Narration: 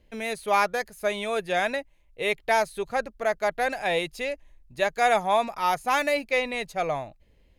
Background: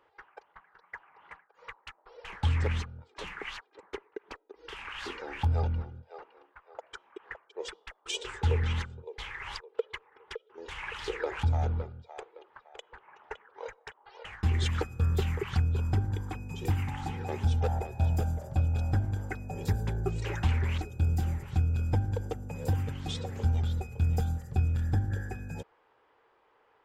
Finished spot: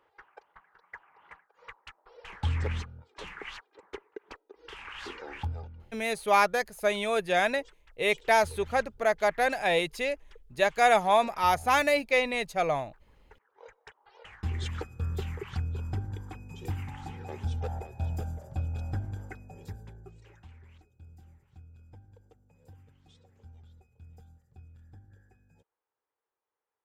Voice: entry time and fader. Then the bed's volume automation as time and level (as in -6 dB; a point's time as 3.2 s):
5.80 s, 0.0 dB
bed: 5.37 s -2 dB
5.7 s -17 dB
13.33 s -17 dB
13.88 s -5.5 dB
19.22 s -5.5 dB
20.48 s -25 dB